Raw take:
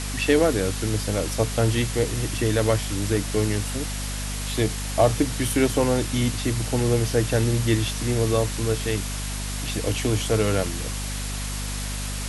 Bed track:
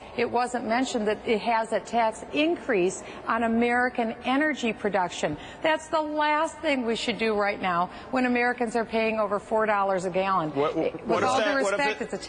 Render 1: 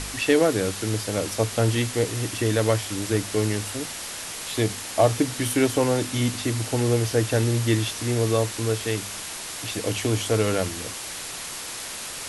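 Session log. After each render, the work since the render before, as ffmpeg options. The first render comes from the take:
-af "bandreject=f=50:t=h:w=4,bandreject=f=100:t=h:w=4,bandreject=f=150:t=h:w=4,bandreject=f=200:t=h:w=4,bandreject=f=250:t=h:w=4"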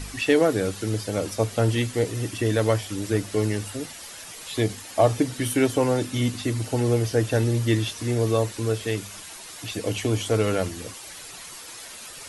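-af "afftdn=nr=10:nf=-35"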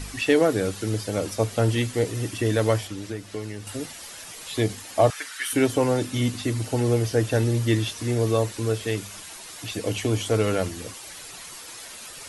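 -filter_complex "[0:a]asettb=1/sr,asplit=3[a][b][c];[a]atrim=end=2.874[d];[b]atrim=start=2.87:end=3.67,asetpts=PTS-STARTPTS,afade=t=in:d=0.004:c=qsin,afade=t=out:st=0.796:d=0.004:c=qsin,acrossover=split=1000|6400[e][f][g];[e]acompressor=threshold=-31dB:ratio=4[h];[f]acompressor=threshold=-44dB:ratio=4[i];[g]acompressor=threshold=-55dB:ratio=4[j];[h][i][j]amix=inputs=3:normalize=0[k];[c]atrim=start=3.666[l];[d][k]acrossfade=d=0.004:c1=hsin:c2=qsin[m];[m][l]acrossfade=d=0.004:c1=qsin:c2=hsin,asettb=1/sr,asplit=3[n][o][p];[n]atrim=end=5.104[q];[o]atrim=start=5.1:end=5.53,asetpts=PTS-STARTPTS,afade=t=in:d=0.004:c=qsin,afade=t=out:st=0.426:d=0.004:c=qsin,highpass=f=1.5k:t=q:w=2.6[r];[p]atrim=start=5.526[s];[q][r]acrossfade=d=0.004:c1=hsin:c2=qsin[t];[t][s]acrossfade=d=0.004:c1=qsin:c2=hsin"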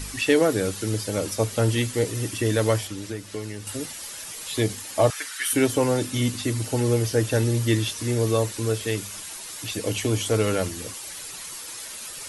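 -af "highshelf=f=5.6k:g=6.5,bandreject=f=710:w=12"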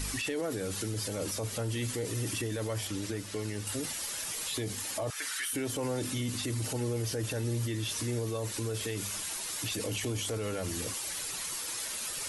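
-af "acompressor=threshold=-24dB:ratio=6,alimiter=level_in=1.5dB:limit=-24dB:level=0:latency=1:release=15,volume=-1.5dB"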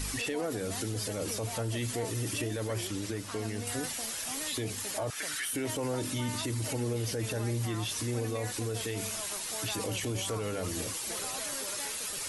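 -filter_complex "[1:a]volume=-20dB[a];[0:a][a]amix=inputs=2:normalize=0"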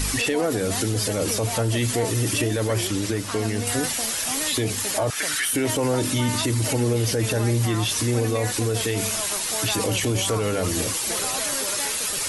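-af "volume=10.5dB"

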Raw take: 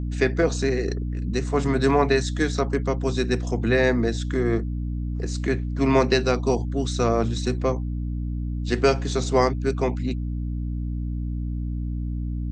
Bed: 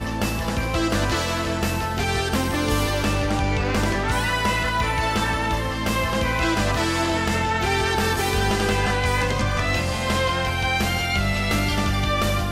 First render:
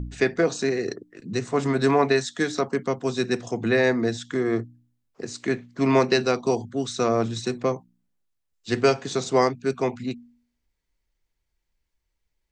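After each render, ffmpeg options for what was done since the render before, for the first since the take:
-af "bandreject=f=60:t=h:w=4,bandreject=f=120:t=h:w=4,bandreject=f=180:t=h:w=4,bandreject=f=240:t=h:w=4,bandreject=f=300:t=h:w=4"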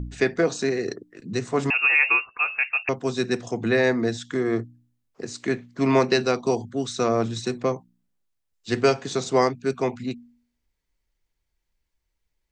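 -filter_complex "[0:a]asettb=1/sr,asplit=3[a][b][c];[a]atrim=end=1.704[d];[b]atrim=start=1.7:end=2.89,asetpts=PTS-STARTPTS,afade=t=in:d=0.004:c=qsin,afade=t=out:st=1.186:d=0.004:c=qsin,lowpass=f=2.5k:t=q:w=0.5098,lowpass=f=2.5k:t=q:w=0.6013,lowpass=f=2.5k:t=q:w=0.9,lowpass=f=2.5k:t=q:w=2.563,afreqshift=-2900[e];[c]atrim=start=2.886[f];[d][e]acrossfade=d=0.004:c1=hsin:c2=qsin[g];[g][f]acrossfade=d=0.004:c1=qsin:c2=hsin"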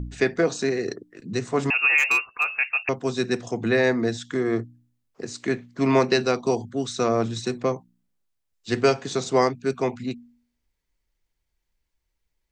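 -filter_complex "[0:a]asettb=1/sr,asplit=3[a][b][c];[a]atrim=end=1.984[d];[b]atrim=start=1.98:end=2.5,asetpts=PTS-STARTPTS,afade=t=in:d=0.004:c=qsin,afade=t=out:st=0.516:d=0.004:c=qsin,asoftclip=type=hard:threshold=-15dB[e];[c]atrim=start=2.496[f];[d][e]acrossfade=d=0.004:c1=hsin:c2=qsin[g];[g][f]acrossfade=d=0.004:c1=qsin:c2=hsin"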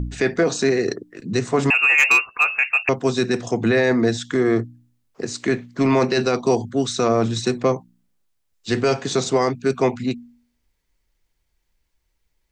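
-af "alimiter=limit=-15dB:level=0:latency=1:release=12,acontrast=61"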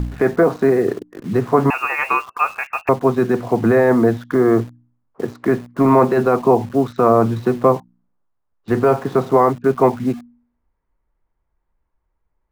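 -filter_complex "[0:a]lowpass=f=1.1k:t=q:w=1.8,asplit=2[a][b];[b]acrusher=bits=5:mix=0:aa=0.000001,volume=-6.5dB[c];[a][c]amix=inputs=2:normalize=0"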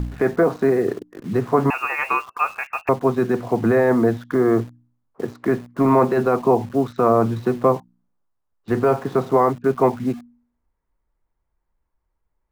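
-af "volume=-3dB"

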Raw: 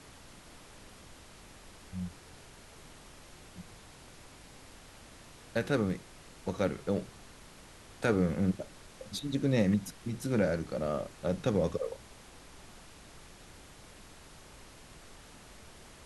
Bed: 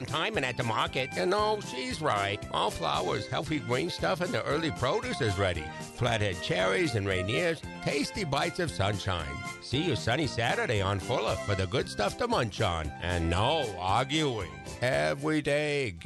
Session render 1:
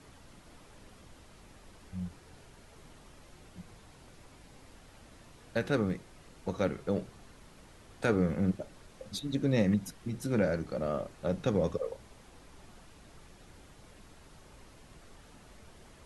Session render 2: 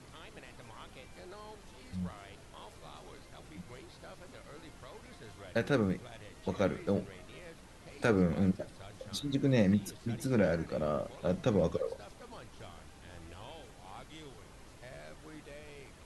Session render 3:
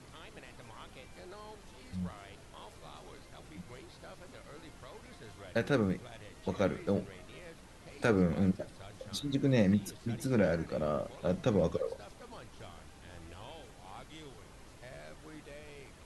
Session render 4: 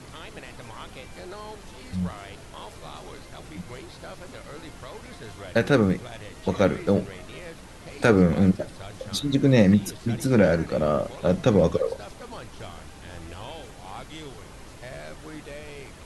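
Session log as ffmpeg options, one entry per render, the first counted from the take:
-af "afftdn=nr=6:nf=-54"
-filter_complex "[1:a]volume=-23dB[a];[0:a][a]amix=inputs=2:normalize=0"
-af anull
-af "volume=10dB"

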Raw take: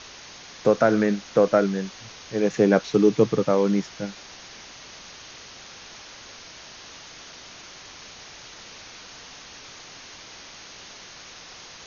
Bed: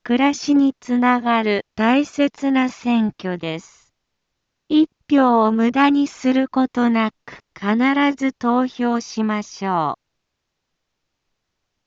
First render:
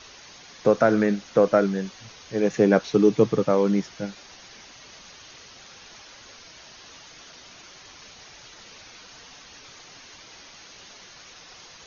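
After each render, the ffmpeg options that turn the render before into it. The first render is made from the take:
-af "afftdn=nr=6:nf=-44"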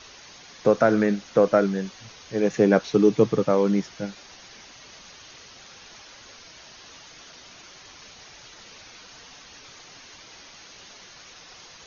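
-af anull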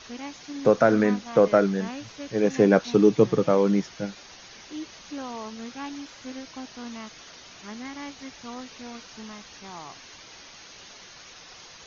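-filter_complex "[1:a]volume=-21.5dB[a];[0:a][a]amix=inputs=2:normalize=0"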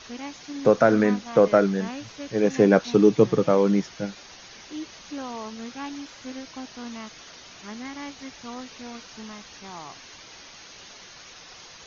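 -af "volume=1dB"

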